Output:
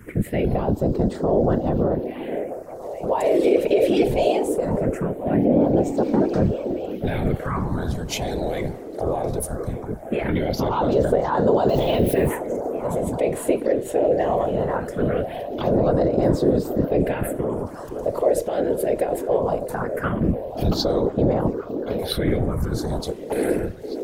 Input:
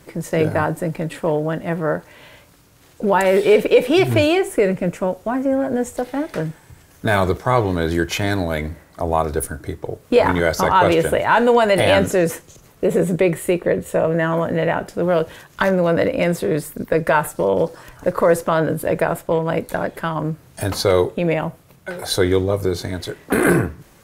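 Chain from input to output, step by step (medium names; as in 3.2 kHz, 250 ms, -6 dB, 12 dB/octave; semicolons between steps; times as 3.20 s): 11.69–12.29 s: zero-crossing glitches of -20.5 dBFS; treble shelf 2.6 kHz -8.5 dB; peak limiter -16 dBFS, peak gain reduction 11.5 dB; phase shifter stages 4, 0.2 Hz, lowest notch 180–2400 Hz; whisper effect; on a send: repeats whose band climbs or falls 520 ms, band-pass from 350 Hz, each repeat 0.7 oct, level -5.5 dB; on the sum: trim +5 dB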